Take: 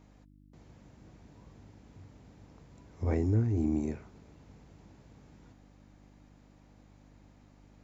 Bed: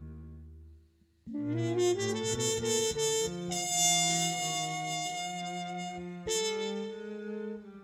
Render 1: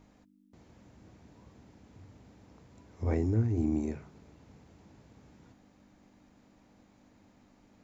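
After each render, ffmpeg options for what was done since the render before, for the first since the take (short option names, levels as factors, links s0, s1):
-af "bandreject=f=50:t=h:w=4,bandreject=f=100:t=h:w=4,bandreject=f=150:t=h:w=4"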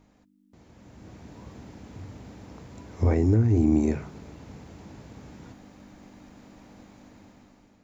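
-af "alimiter=level_in=1.06:limit=0.0631:level=0:latency=1:release=264,volume=0.944,dynaudnorm=f=380:g=5:m=3.98"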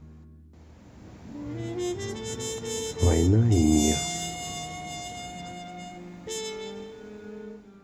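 -filter_complex "[1:a]volume=0.75[s0];[0:a][s0]amix=inputs=2:normalize=0"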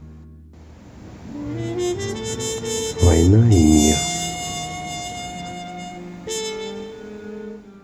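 -af "volume=2.37"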